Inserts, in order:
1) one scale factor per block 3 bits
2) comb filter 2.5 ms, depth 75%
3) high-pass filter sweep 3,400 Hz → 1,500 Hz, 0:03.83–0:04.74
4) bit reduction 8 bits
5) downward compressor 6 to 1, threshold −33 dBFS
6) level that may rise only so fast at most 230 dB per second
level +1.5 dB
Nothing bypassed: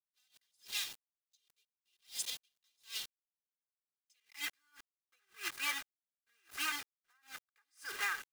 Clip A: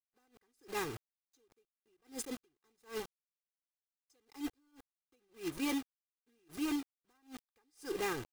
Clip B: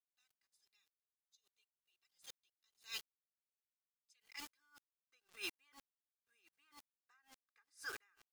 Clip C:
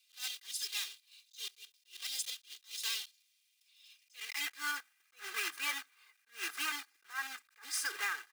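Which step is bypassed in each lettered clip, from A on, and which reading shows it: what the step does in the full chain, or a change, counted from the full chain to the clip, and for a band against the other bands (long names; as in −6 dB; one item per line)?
3, 250 Hz band +27.0 dB
1, distortion level −12 dB
4, distortion level −19 dB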